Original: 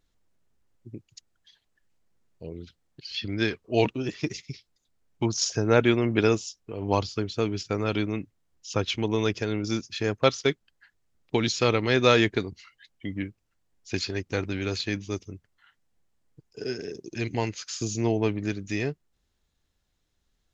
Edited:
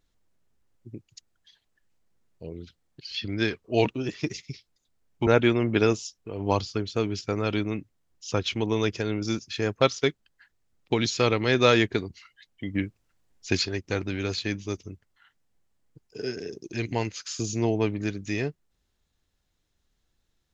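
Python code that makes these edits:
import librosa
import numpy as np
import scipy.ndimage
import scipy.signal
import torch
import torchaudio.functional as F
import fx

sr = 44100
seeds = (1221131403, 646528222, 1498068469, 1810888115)

y = fx.edit(x, sr, fx.cut(start_s=5.27, length_s=0.42),
    fx.clip_gain(start_s=13.17, length_s=0.9, db=4.5), tone=tone)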